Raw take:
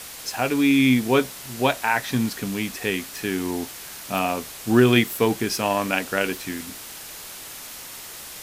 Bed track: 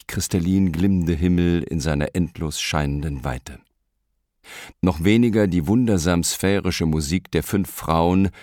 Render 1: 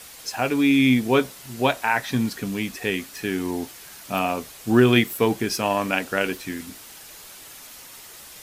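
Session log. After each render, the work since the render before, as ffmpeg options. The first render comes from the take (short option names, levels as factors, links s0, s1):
-af "afftdn=nr=6:nf=-39"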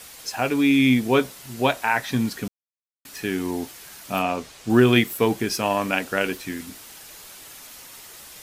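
-filter_complex "[0:a]asettb=1/sr,asplit=3[s0][s1][s2];[s0]atrim=end=4.224[s3];[s1]atrim=start=4.22:end=4.7,asetpts=PTS-STARTPTS,afade=t=in:d=0.004:c=qsin,afade=t=out:st=0.476:d=0.004:c=qsin,acrossover=split=8300[s4][s5];[s5]acompressor=threshold=0.00126:ratio=4:attack=1:release=60[s6];[s4][s6]amix=inputs=2:normalize=0[s7];[s2]atrim=start=4.696[s8];[s3][s7]acrossfade=d=0.004:c1=hsin:c2=qsin[s9];[s9][s8]acrossfade=d=0.004:c1=qsin:c2=hsin,asplit=3[s10][s11][s12];[s10]atrim=end=2.48,asetpts=PTS-STARTPTS,afade=t=out:st=2.476:d=0.004:c=hsin[s13];[s11]atrim=start=2.48:end=3.05,asetpts=PTS-STARTPTS,volume=0[s14];[s12]atrim=start=3.05,asetpts=PTS-STARTPTS,afade=t=in:d=0.004:c=hsin[s15];[s13][s14][s15]concat=n=3:v=0:a=1"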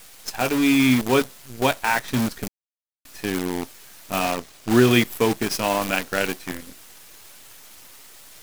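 -af "acrusher=bits=5:dc=4:mix=0:aa=0.000001"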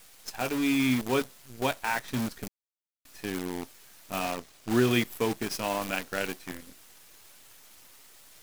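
-af "volume=0.398"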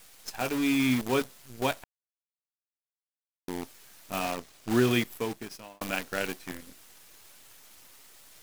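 -filter_complex "[0:a]asplit=4[s0][s1][s2][s3];[s0]atrim=end=1.84,asetpts=PTS-STARTPTS,afade=t=out:st=1.836:d=0.004:c=hsin[s4];[s1]atrim=start=1.84:end=3.48,asetpts=PTS-STARTPTS,volume=0[s5];[s2]atrim=start=3.48:end=5.81,asetpts=PTS-STARTPTS,afade=t=in:d=0.004:c=hsin,afade=t=out:st=1.41:d=0.92[s6];[s3]atrim=start=5.81,asetpts=PTS-STARTPTS,afade=t=in:d=0.004:c=hsin[s7];[s4][s5][s6][s7]concat=n=4:v=0:a=1"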